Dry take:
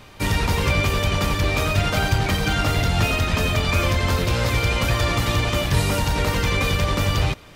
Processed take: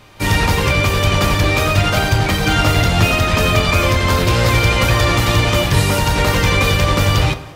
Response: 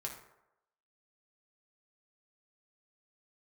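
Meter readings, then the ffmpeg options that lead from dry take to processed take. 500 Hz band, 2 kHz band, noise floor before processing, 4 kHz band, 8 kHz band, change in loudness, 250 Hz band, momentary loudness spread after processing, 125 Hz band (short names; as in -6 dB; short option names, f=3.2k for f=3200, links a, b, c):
+7.0 dB, +7.0 dB, -43 dBFS, +6.5 dB, +6.5 dB, +6.5 dB, +6.0 dB, 2 LU, +6.0 dB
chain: -filter_complex "[0:a]dynaudnorm=f=150:g=3:m=8.5dB,asplit=2[a][b];[1:a]atrim=start_sample=2205,asetrate=34839,aresample=44100,lowshelf=f=110:g=-10.5[c];[b][c]afir=irnorm=-1:irlink=0,volume=-3dB[d];[a][d]amix=inputs=2:normalize=0,volume=-3.5dB"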